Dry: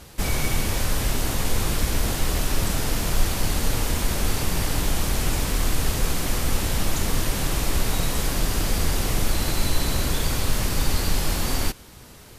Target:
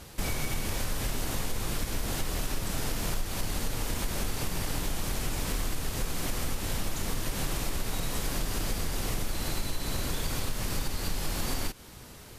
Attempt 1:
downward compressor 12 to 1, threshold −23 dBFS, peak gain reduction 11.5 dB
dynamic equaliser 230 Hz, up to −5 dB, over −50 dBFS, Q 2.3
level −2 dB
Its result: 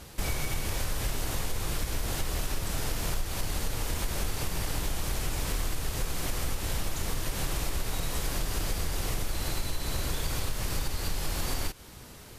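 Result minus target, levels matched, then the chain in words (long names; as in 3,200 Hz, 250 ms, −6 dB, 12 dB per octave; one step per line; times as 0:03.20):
250 Hz band −2.5 dB
downward compressor 12 to 1, threshold −23 dBFS, peak gain reduction 11.5 dB
dynamic equaliser 60 Hz, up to −5 dB, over −50 dBFS, Q 2.3
level −2 dB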